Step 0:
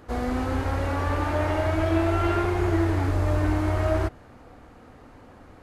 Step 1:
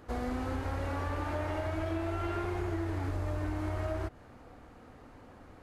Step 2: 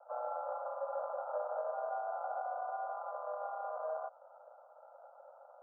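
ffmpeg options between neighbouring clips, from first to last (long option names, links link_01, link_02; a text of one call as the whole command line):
ffmpeg -i in.wav -af "acompressor=threshold=-26dB:ratio=6,volume=-4.5dB" out.wav
ffmpeg -i in.wav -af "acrusher=samples=40:mix=1:aa=0.000001,asuperpass=centerf=850:order=20:qfactor=1,volume=4.5dB" out.wav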